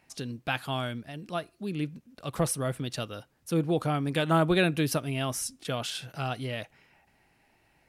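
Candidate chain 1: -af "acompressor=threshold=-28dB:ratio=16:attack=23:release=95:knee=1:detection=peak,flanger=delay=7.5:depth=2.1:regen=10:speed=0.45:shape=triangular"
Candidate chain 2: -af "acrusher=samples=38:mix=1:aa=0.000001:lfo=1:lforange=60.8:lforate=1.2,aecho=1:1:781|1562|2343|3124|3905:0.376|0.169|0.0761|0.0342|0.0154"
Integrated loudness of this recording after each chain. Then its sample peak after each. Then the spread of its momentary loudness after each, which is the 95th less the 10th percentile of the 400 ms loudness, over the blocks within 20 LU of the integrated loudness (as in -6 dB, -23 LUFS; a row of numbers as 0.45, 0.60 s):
-36.0, -30.5 LUFS; -20.5, -12.5 dBFS; 8, 15 LU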